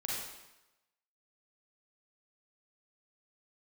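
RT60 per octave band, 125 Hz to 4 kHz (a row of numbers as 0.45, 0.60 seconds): 0.85, 0.90, 0.95, 1.0, 0.95, 0.90 seconds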